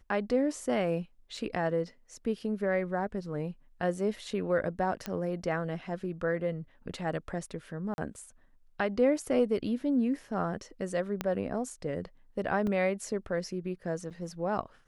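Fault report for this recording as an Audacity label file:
1.370000	1.370000	dropout 2.9 ms
5.060000	5.060000	pop -19 dBFS
7.940000	7.980000	dropout 41 ms
11.210000	11.210000	pop -16 dBFS
12.670000	12.670000	dropout 2.9 ms
14.100000	14.110000	dropout 6.5 ms

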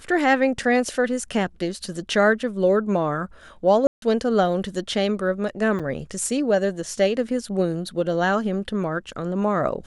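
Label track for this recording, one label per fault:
3.870000	4.020000	dropout 152 ms
5.790000	5.800000	dropout 6.1 ms

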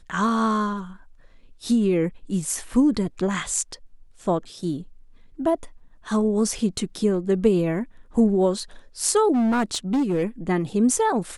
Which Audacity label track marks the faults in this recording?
9.320000	10.240000	clipped -18 dBFS

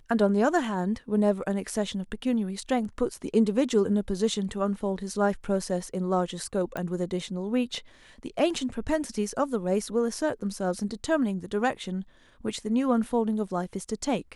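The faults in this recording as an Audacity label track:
6.770000	6.770000	pop -19 dBFS

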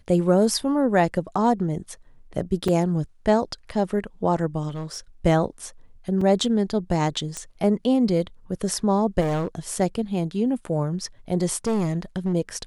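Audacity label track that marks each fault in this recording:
2.680000	2.680000	dropout 4.4 ms
4.680000	4.980000	clipped -26.5 dBFS
6.210000	6.210000	dropout 3.8 ms
7.370000	7.370000	pop -17 dBFS
9.200000	9.730000	clipped -21 dBFS
11.670000	12.340000	clipped -19 dBFS

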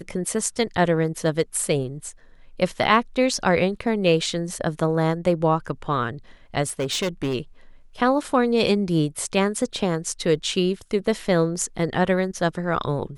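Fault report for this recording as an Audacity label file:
6.670000	7.350000	clipped -20.5 dBFS

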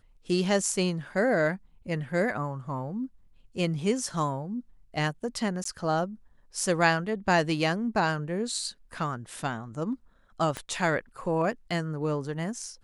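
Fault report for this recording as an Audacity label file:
5.640000	5.650000	dropout 14 ms
10.570000	10.570000	pop -18 dBFS

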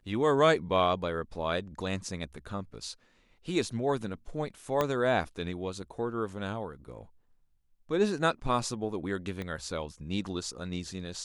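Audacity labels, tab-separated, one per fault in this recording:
4.810000	4.810000	pop -14 dBFS
9.420000	9.420000	pop -24 dBFS

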